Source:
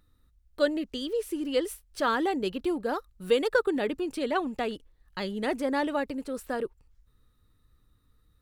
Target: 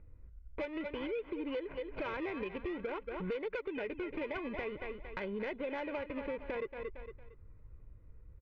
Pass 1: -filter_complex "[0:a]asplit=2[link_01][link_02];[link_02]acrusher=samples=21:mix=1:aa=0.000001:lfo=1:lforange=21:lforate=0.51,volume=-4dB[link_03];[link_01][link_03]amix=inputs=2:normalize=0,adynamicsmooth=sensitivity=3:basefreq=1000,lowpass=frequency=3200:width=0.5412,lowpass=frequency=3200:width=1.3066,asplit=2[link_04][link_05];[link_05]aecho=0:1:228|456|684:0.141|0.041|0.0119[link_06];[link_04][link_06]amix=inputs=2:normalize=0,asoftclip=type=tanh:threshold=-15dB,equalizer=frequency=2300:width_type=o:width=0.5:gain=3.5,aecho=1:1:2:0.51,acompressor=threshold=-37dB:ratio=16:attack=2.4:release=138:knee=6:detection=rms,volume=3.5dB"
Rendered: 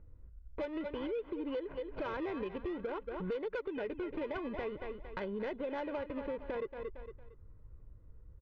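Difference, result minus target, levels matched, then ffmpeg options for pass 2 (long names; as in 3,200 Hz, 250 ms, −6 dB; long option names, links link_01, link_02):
2,000 Hz band −4.0 dB
-filter_complex "[0:a]asplit=2[link_01][link_02];[link_02]acrusher=samples=21:mix=1:aa=0.000001:lfo=1:lforange=21:lforate=0.51,volume=-4dB[link_03];[link_01][link_03]amix=inputs=2:normalize=0,adynamicsmooth=sensitivity=3:basefreq=1000,lowpass=frequency=3200:width=0.5412,lowpass=frequency=3200:width=1.3066,asplit=2[link_04][link_05];[link_05]aecho=0:1:228|456|684:0.141|0.041|0.0119[link_06];[link_04][link_06]amix=inputs=2:normalize=0,asoftclip=type=tanh:threshold=-15dB,equalizer=frequency=2300:width_type=o:width=0.5:gain=14,aecho=1:1:2:0.51,acompressor=threshold=-37dB:ratio=16:attack=2.4:release=138:knee=6:detection=rms,volume=3.5dB"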